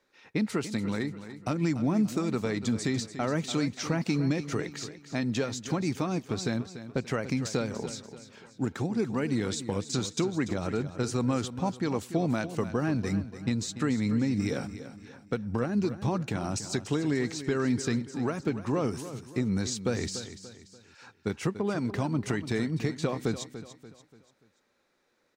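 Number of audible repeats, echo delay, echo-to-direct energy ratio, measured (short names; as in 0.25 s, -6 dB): 3, 0.29 s, -11.5 dB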